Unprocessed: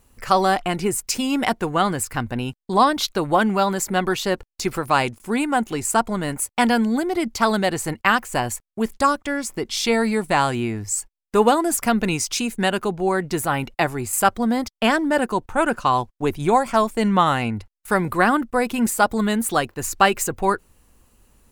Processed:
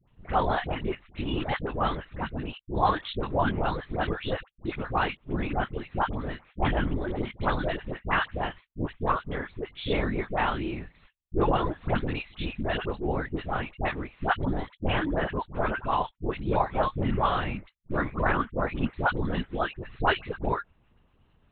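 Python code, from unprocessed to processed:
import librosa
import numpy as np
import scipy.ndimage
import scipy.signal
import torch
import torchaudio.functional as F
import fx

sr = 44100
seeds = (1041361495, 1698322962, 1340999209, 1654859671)

y = fx.lpc_vocoder(x, sr, seeds[0], excitation='whisper', order=10)
y = fx.vibrato(y, sr, rate_hz=0.86, depth_cents=37.0)
y = fx.dispersion(y, sr, late='highs', ms=77.0, hz=860.0)
y = F.gain(torch.from_numpy(y), -7.5).numpy()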